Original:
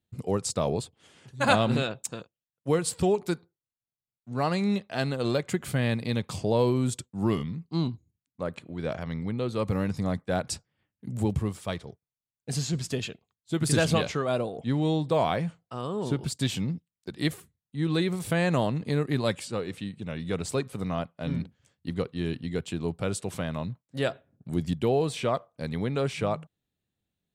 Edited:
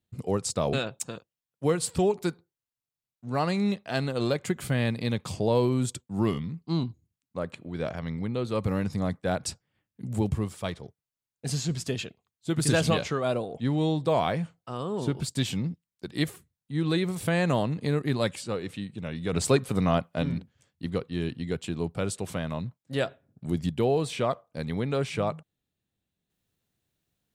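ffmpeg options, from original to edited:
ffmpeg -i in.wav -filter_complex "[0:a]asplit=4[link_01][link_02][link_03][link_04];[link_01]atrim=end=0.732[link_05];[link_02]atrim=start=1.768:end=20.372[link_06];[link_03]atrim=start=20.368:end=21.272,asetpts=PTS-STARTPTS,volume=6.5dB[link_07];[link_04]atrim=start=21.268[link_08];[link_05][link_06]acrossfade=duration=0.004:curve1=hsin:curve2=hsin[link_09];[link_09][link_07]acrossfade=duration=0.004:curve1=hsin:curve2=hsin[link_10];[link_10][link_08]acrossfade=duration=0.004:curve1=hsin:curve2=hsin" out.wav

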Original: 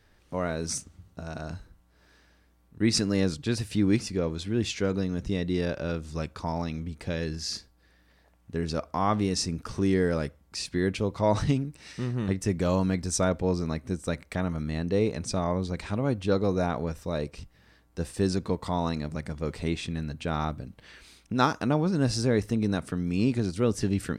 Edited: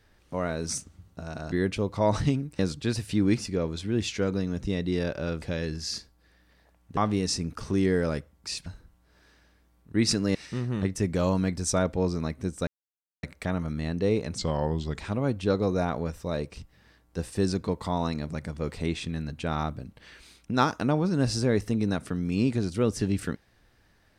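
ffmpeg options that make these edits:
ffmpeg -i in.wav -filter_complex "[0:a]asplit=10[link_01][link_02][link_03][link_04][link_05][link_06][link_07][link_08][link_09][link_10];[link_01]atrim=end=1.522[link_11];[link_02]atrim=start=10.738:end=11.812[link_12];[link_03]atrim=start=3.208:end=6.042[link_13];[link_04]atrim=start=7.008:end=8.562[link_14];[link_05]atrim=start=9.048:end=10.742[link_15];[link_06]atrim=start=1.518:end=3.212[link_16];[link_07]atrim=start=11.808:end=14.13,asetpts=PTS-STARTPTS,afade=type=out:start_time=2.318:duration=0.004:curve=hsin,apad=pad_dur=0.56[link_17];[link_08]atrim=start=14.13:end=15.284,asetpts=PTS-STARTPTS,afade=type=in:duration=0.004:curve=hsin[link_18];[link_09]atrim=start=15.28:end=15.8,asetpts=PTS-STARTPTS,asetrate=37926,aresample=44100,atrim=end_sample=26665,asetpts=PTS-STARTPTS[link_19];[link_10]atrim=start=15.796[link_20];[link_11][link_12]acrossfade=duration=0.004:curve1=hsin:curve2=hsin[link_21];[link_21][link_13]acrossfade=duration=0.004:curve1=hsin:curve2=hsin[link_22];[link_22][link_14]acrossfade=duration=0.004:curve1=hsin:curve2=hsin[link_23];[link_23][link_15]acrossfade=duration=0.004:curve1=hsin:curve2=hsin[link_24];[link_24][link_16]acrossfade=duration=0.004:curve1=hsin:curve2=hsin[link_25];[link_17][link_18]concat=n=2:v=0:a=1[link_26];[link_25][link_26]acrossfade=duration=0.004:curve1=hsin:curve2=hsin[link_27];[link_27][link_19]acrossfade=duration=0.004:curve1=hsin:curve2=hsin[link_28];[link_28][link_20]acrossfade=duration=0.004:curve1=hsin:curve2=hsin" out.wav

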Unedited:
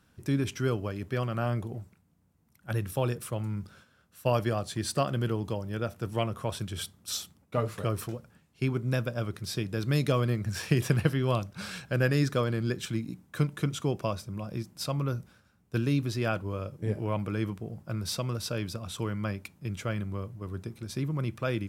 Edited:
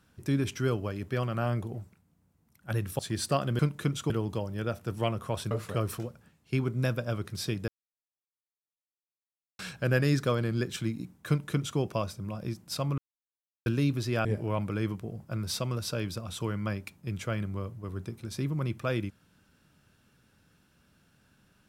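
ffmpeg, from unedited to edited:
ffmpeg -i in.wav -filter_complex "[0:a]asplit=10[link_01][link_02][link_03][link_04][link_05][link_06][link_07][link_08][link_09][link_10];[link_01]atrim=end=2.992[link_11];[link_02]atrim=start=4.648:end=5.252[link_12];[link_03]atrim=start=13.368:end=13.882[link_13];[link_04]atrim=start=5.248:end=6.662[link_14];[link_05]atrim=start=7.598:end=9.77,asetpts=PTS-STARTPTS,afade=type=out:start_time=2.168:duration=0.004:curve=hsin[link_15];[link_06]atrim=start=9.77:end=11.68,asetpts=PTS-STARTPTS,volume=0[link_16];[link_07]atrim=start=11.68:end=15.07,asetpts=PTS-STARTPTS,afade=type=in:duration=0.004:curve=hsin,afade=type=out:start_time=3.386:duration=0.004:curve=hsin[link_17];[link_08]atrim=start=15.07:end=15.75,asetpts=PTS-STARTPTS,volume=0[link_18];[link_09]atrim=start=15.75:end=16.342,asetpts=PTS-STARTPTS,afade=type=in:duration=0.004:curve=hsin[link_19];[link_10]atrim=start=16.828[link_20];[link_11][link_12]acrossfade=duration=0.004:curve1=hsin:curve2=hsin[link_21];[link_21][link_13]acrossfade=duration=0.004:curve1=hsin:curve2=hsin[link_22];[link_22][link_14]acrossfade=duration=0.004:curve1=hsin:curve2=hsin[link_23];[link_15][link_16][link_17][link_18][link_19]concat=n=5:v=0:a=1[link_24];[link_23][link_24]acrossfade=duration=0.004:curve1=hsin:curve2=hsin[link_25];[link_25][link_20]acrossfade=duration=0.004:curve1=hsin:curve2=hsin" out.wav

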